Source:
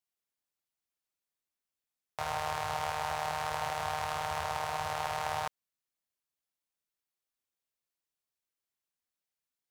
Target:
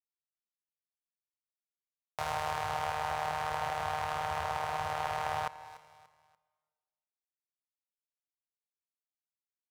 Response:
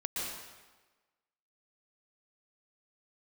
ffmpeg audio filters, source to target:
-filter_complex "[0:a]aeval=exprs='val(0)*gte(abs(val(0)),0.00141)':c=same,aecho=1:1:291|582|873:0.126|0.0441|0.0154,asplit=2[s0][s1];[1:a]atrim=start_sample=2205,asetrate=33957,aresample=44100[s2];[s1][s2]afir=irnorm=-1:irlink=0,volume=0.0501[s3];[s0][s3]amix=inputs=2:normalize=0,adynamicequalizer=threshold=0.00316:dfrequency=3300:dqfactor=0.7:tfrequency=3300:tqfactor=0.7:attack=5:release=100:ratio=0.375:range=3:mode=cutabove:tftype=highshelf"

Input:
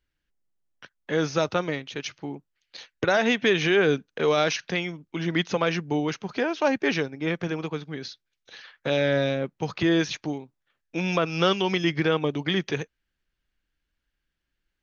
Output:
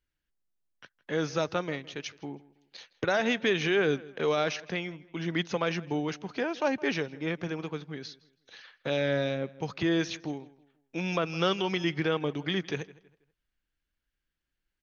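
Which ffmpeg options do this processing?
-filter_complex "[0:a]asettb=1/sr,asplit=3[s0][s1][s2];[s0]atrim=end=4.354[s3];[s1]atrim=start=4.35:end=5.17,asetpts=PTS-STARTPTS,afade=t=in:d=0.004:c=qsin,afade=t=out:st=0.816:d=0.004:c=qsin,highshelf=f=4700:g=-6.5[s4];[s2]atrim=start=5.166[s5];[s3][s4]acrossfade=d=0.004:c1=hsin:c2=qsin[s6];[s6][s5]acrossfade=d=0.004:c1=qsin:c2=hsin,asplit=2[s7][s8];[s8]adelay=162,lowpass=f=3800:p=1,volume=0.1,asplit=2[s9][s10];[s10]adelay=162,lowpass=f=3800:p=1,volume=0.34,asplit=2[s11][s12];[s12]adelay=162,lowpass=f=3800:p=1,volume=0.34[s13];[s7][s9][s11][s13]amix=inputs=4:normalize=0,volume=0.562"

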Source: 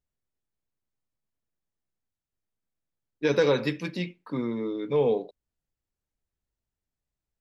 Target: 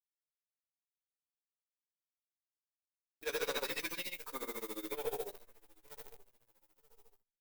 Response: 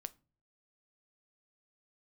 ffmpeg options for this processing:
-filter_complex "[0:a]highpass=640,asplit=2[s0][s1];[s1]adelay=933,lowpass=f=2500:p=1,volume=0.0668,asplit=2[s2][s3];[s3]adelay=933,lowpass=f=2500:p=1,volume=0.3[s4];[s0][s2][s4]amix=inputs=3:normalize=0,alimiter=level_in=1.06:limit=0.0631:level=0:latency=1:release=422,volume=0.944,asettb=1/sr,asplit=3[s5][s6][s7];[s5]atrim=end=3.254[s8];[s6]atrim=start=3.25:end=3.93,asetpts=PTS-STARTPTS,afade=t=in:d=0.004:c=qsin,afade=t=out:st=0.676:d=0.004:c=qsin,acontrast=86[s9];[s7]atrim=start=3.926[s10];[s8][s9]acrossfade=d=0.004:c1=hsin:c2=qsin[s11];[s11][s10]acrossfade=d=0.004:c1=qsin:c2=hsin,acrusher=bits=9:dc=4:mix=0:aa=0.000001,aemphasis=mode=production:type=50fm,asoftclip=type=tanh:threshold=0.0266,aecho=1:1:15|41:0.501|0.15,asplit=2[s12][s13];[1:a]atrim=start_sample=2205,adelay=97[s14];[s13][s14]afir=irnorm=-1:irlink=0,volume=1.33[s15];[s12][s15]amix=inputs=2:normalize=0,tremolo=f=14:d=0.89,volume=0.841"

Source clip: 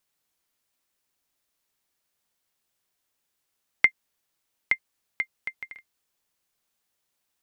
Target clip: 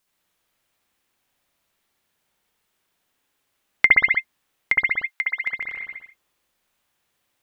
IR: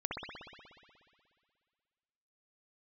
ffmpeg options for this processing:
-filter_complex "[0:a]asettb=1/sr,asplit=3[s0][s1][s2];[s0]atrim=end=4.724[s3];[s1]atrim=start=4.72:end=5.37,asetpts=PTS-STARTPTS,afade=t=in:d=0.004:c=qsin,afade=t=out:st=0.646:d=0.004:c=qsin,highpass=940[s4];[s2]atrim=start=5.366[s5];[s3][s4]acrossfade=d=0.004:c1=hsin:c2=qsin[s6];[s6][s5]acrossfade=d=0.004:c1=qsin:c2=hsin[s7];[1:a]atrim=start_sample=2205,afade=t=out:st=0.4:d=0.01,atrim=end_sample=18081[s8];[s7][s8]afir=irnorm=-1:irlink=0,volume=1.88"

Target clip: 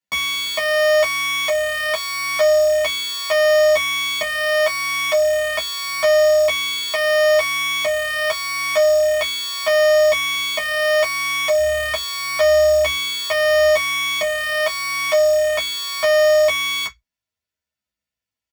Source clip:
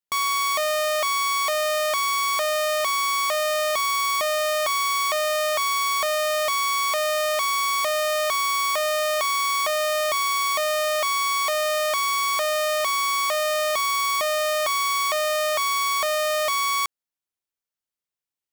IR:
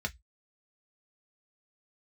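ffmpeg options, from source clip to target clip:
-filter_complex "[0:a]asettb=1/sr,asplit=3[s0][s1][s2];[s0]atrim=end=11.544[s3];[s1]atrim=start=11.54:end=13.65,asetpts=PTS-STARTPTS,afade=t=in:d=0.004:c=qsin,afade=t=out:st=2.106:d=0.004:c=qsin,equalizer=f=69:w=1.6:g=12.5[s4];[s2]atrim=start=13.646[s5];[s3][s4]acrossfade=d=0.004:c1=hsin:c2=qsin[s6];[s6][s5]acrossfade=d=0.004:c1=qsin:c2=hsin[s7];[1:a]atrim=start_sample=2205,afade=t=out:st=0.19:d=0.01,atrim=end_sample=8820[s8];[s7][s8]afir=irnorm=-1:irlink=0,asplit=2[s9][s10];[s10]adelay=11.2,afreqshift=-0.79[s11];[s9][s11]amix=inputs=2:normalize=1,volume=1.88"

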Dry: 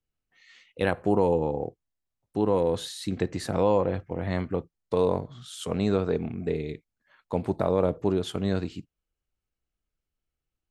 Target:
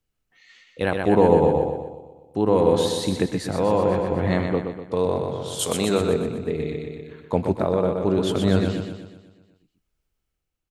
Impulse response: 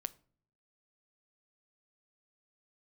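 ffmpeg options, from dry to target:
-filter_complex "[0:a]asettb=1/sr,asplit=3[s0][s1][s2];[s0]atrim=end=5.594[s3];[s1]atrim=start=5.59:end=6.01,asetpts=PTS-STARTPTS,afade=t=in:d=0.004:c=qsin,afade=t=out:st=0.416:d=0.004:c=qsin,aemphasis=mode=production:type=bsi[s4];[s2]atrim=start=6.006[s5];[s3][s4]acrossfade=d=0.004:c1=hsin:c2=qsin[s6];[s6][s5]acrossfade=d=0.004:c1=qsin:c2=hsin,aecho=1:1:123|246|369|492|615|738|861|984:0.531|0.308|0.179|0.104|0.0601|0.0348|0.0202|0.0117,tremolo=f=0.7:d=0.47,volume=2.11"

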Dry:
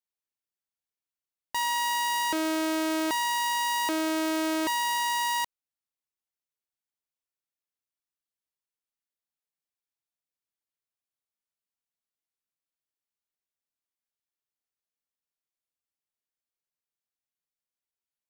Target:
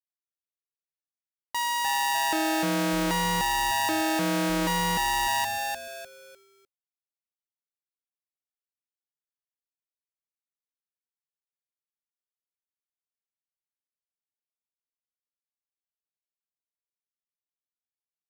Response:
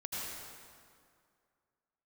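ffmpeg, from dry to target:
-filter_complex "[0:a]asplit=5[s0][s1][s2][s3][s4];[s1]adelay=301,afreqshift=-140,volume=0.708[s5];[s2]adelay=602,afreqshift=-280,volume=0.234[s6];[s3]adelay=903,afreqshift=-420,volume=0.0767[s7];[s4]adelay=1204,afreqshift=-560,volume=0.0254[s8];[s0][s5][s6][s7][s8]amix=inputs=5:normalize=0,agate=range=0.0224:threshold=0.00158:ratio=3:detection=peak"

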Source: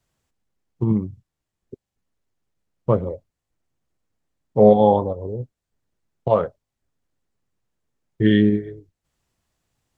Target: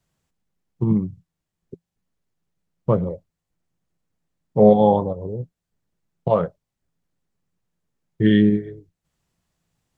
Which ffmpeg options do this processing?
-af "equalizer=f=170:t=o:w=0.31:g=10.5,volume=0.891"

